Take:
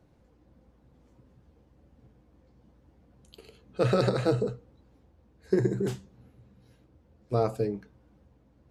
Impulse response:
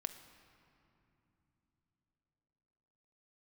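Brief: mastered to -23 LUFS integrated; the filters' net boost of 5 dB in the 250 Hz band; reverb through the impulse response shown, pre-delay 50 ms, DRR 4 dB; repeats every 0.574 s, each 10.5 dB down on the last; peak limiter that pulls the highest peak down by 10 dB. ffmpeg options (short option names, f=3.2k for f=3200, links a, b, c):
-filter_complex "[0:a]equalizer=f=250:t=o:g=8,alimiter=limit=-18.5dB:level=0:latency=1,aecho=1:1:574|1148|1722:0.299|0.0896|0.0269,asplit=2[a][b];[1:a]atrim=start_sample=2205,adelay=50[c];[b][c]afir=irnorm=-1:irlink=0,volume=-2dB[d];[a][d]amix=inputs=2:normalize=0,volume=7.5dB"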